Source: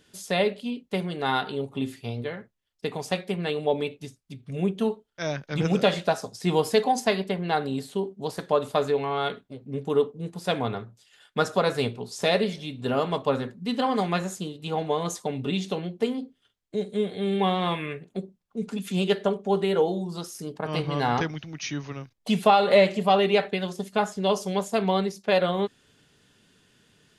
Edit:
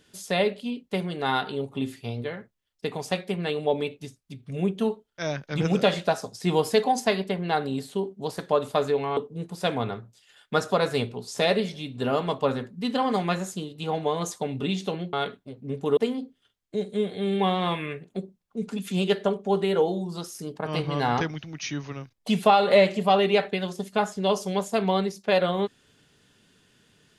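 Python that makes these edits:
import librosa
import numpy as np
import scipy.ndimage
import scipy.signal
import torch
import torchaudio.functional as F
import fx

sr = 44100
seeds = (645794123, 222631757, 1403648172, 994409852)

y = fx.edit(x, sr, fx.move(start_s=9.17, length_s=0.84, to_s=15.97), tone=tone)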